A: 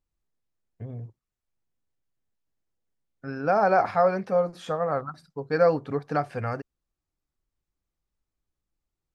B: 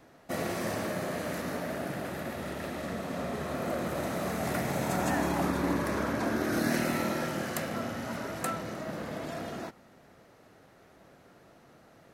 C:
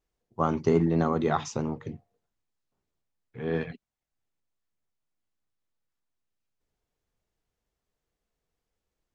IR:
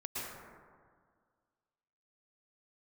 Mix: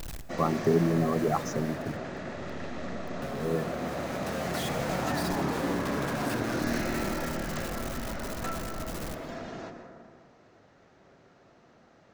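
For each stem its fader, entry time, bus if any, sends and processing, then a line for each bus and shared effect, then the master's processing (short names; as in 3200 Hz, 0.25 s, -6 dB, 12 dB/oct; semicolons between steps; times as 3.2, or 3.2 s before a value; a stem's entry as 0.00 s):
-8.5 dB, 0.00 s, send -13 dB, infinite clipping; auto duck -16 dB, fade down 0.20 s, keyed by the third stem
-5.0 dB, 0.00 s, send -4.5 dB, steep low-pass 7100 Hz 36 dB/oct
-0.5 dB, 0.00 s, no send, spectral gate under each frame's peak -10 dB strong; bit-crush 8-bit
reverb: on, RT60 1.8 s, pre-delay 0.103 s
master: dry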